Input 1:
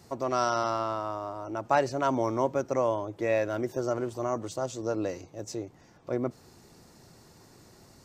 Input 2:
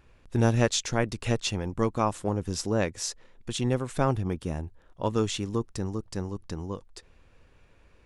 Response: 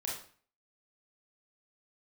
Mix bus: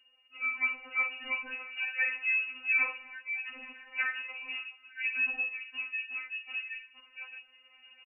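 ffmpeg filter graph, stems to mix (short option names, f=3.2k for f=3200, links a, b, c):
-filter_complex "[0:a]acompressor=mode=upward:threshold=-42dB:ratio=2.5,adelay=1100,volume=-4dB[a];[1:a]dynaudnorm=f=110:g=17:m=9dB,volume=-12dB,asplit=3[b][c][d];[c]volume=-3.5dB[e];[d]apad=whole_len=403329[f];[a][f]sidechaincompress=threshold=-47dB:ratio=8:attack=7.1:release=365[g];[2:a]atrim=start_sample=2205[h];[e][h]afir=irnorm=-1:irlink=0[i];[g][b][i]amix=inputs=3:normalize=0,lowpass=f=2.5k:t=q:w=0.5098,lowpass=f=2.5k:t=q:w=0.6013,lowpass=f=2.5k:t=q:w=0.9,lowpass=f=2.5k:t=q:w=2.563,afreqshift=-2900,afftfilt=real='re*3.46*eq(mod(b,12),0)':imag='im*3.46*eq(mod(b,12),0)':win_size=2048:overlap=0.75"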